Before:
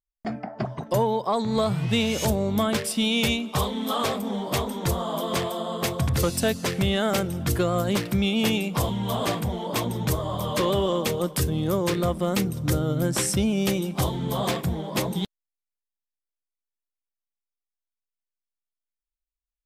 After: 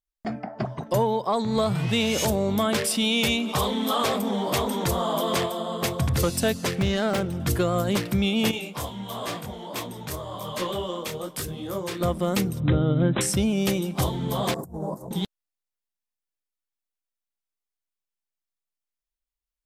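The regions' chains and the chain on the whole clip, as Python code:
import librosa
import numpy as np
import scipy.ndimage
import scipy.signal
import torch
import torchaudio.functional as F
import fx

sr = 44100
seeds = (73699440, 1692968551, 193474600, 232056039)

y = fx.chain(x, sr, fx.low_shelf(hz=160.0, db=-6.0),
    fx.env_flatten(amount_pct=50), at=(1.75, 5.46))
y = fx.chain(y, sr, fx.self_delay(depth_ms=0.1),
    fx.high_shelf(hz=5800.0, db=-8.5), at=(6.75, 7.4))
y = fx.chain(y, sr, fx.low_shelf(hz=400.0, db=-6.5),
    fx.detune_double(cents=35), at=(8.51, 12.01))
y = fx.chain(y, sr, fx.brickwall_lowpass(high_hz=4000.0),
    fx.peak_eq(hz=190.0, db=4.0, octaves=2.1), at=(12.6, 13.21))
y = fx.chain(y, sr, fx.cheby1_bandstop(low_hz=870.0, high_hz=8000.0, order=2),
    fx.over_compress(threshold_db=-33.0, ratio=-0.5), at=(14.54, 15.11))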